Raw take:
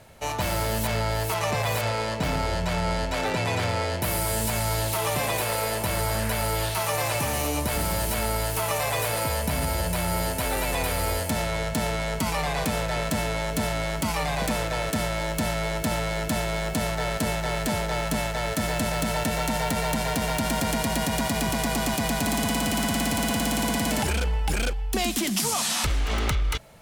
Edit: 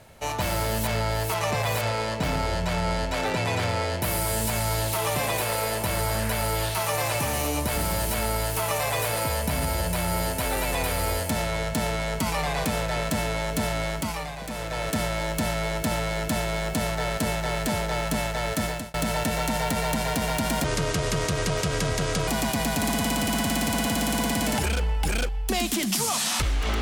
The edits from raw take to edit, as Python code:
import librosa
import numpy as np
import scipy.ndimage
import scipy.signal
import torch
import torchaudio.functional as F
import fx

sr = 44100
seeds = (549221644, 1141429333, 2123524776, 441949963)

y = fx.edit(x, sr, fx.fade_down_up(start_s=13.87, length_s=1.06, db=-9.5, fade_s=0.48),
    fx.fade_out_span(start_s=18.63, length_s=0.31),
    fx.speed_span(start_s=20.64, length_s=1.08, speed=0.66), tone=tone)